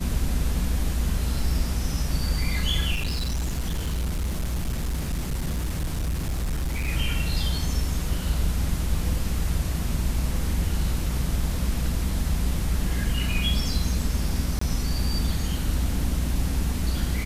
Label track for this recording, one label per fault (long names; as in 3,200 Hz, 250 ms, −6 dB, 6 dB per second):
2.940000	6.890000	clipping −23 dBFS
14.590000	14.610000	drop-out 24 ms